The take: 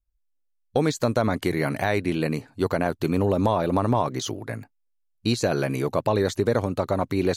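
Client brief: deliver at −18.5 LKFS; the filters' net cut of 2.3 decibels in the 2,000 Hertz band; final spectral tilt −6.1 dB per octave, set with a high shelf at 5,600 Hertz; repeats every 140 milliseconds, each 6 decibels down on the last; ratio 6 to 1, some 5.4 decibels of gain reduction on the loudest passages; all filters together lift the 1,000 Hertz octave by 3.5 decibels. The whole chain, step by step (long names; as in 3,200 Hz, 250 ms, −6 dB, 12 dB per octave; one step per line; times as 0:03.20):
parametric band 1,000 Hz +5.5 dB
parametric band 2,000 Hz −4.5 dB
high-shelf EQ 5,600 Hz −5.5 dB
downward compressor 6 to 1, threshold −21 dBFS
repeating echo 140 ms, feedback 50%, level −6 dB
level +8 dB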